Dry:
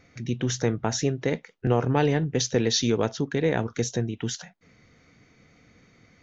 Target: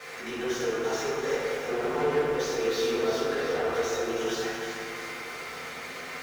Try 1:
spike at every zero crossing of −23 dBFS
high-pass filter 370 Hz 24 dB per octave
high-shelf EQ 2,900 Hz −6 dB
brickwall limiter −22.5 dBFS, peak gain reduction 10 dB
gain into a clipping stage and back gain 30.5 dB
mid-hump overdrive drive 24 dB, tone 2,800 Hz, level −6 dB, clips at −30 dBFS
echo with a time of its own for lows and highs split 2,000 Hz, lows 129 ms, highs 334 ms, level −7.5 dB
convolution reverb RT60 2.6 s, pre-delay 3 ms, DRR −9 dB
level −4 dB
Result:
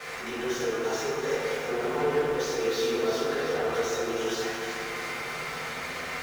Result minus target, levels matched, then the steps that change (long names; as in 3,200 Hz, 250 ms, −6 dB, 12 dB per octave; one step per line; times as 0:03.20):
spike at every zero crossing: distortion +8 dB
change: spike at every zero crossing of −31.5 dBFS